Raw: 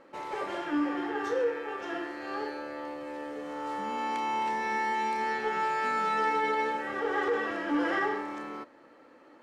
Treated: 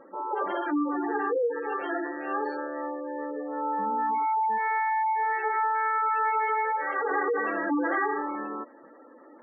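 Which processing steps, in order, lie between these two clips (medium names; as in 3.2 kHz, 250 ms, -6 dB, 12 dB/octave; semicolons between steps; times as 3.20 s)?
4.58–7.11 s: high-pass 450 Hz 12 dB/octave; spectral gate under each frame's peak -15 dB strong; dynamic bell 1.1 kHz, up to +4 dB, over -41 dBFS, Q 1.1; compression 2.5:1, threshold -30 dBFS, peak gain reduction 5.5 dB; trim +5 dB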